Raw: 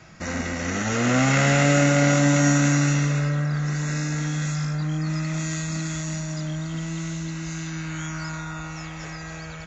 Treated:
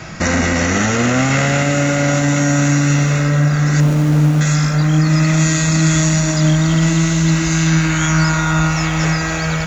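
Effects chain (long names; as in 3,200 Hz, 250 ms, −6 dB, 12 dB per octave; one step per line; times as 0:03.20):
0:03.80–0:04.41: running median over 25 samples
in parallel at +2.5 dB: speech leveller within 4 dB
on the sum: brickwall limiter −14 dBFS, peak gain reduction 11.5 dB
feedback echo at a low word length 447 ms, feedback 80%, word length 8 bits, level −15 dB
level +7 dB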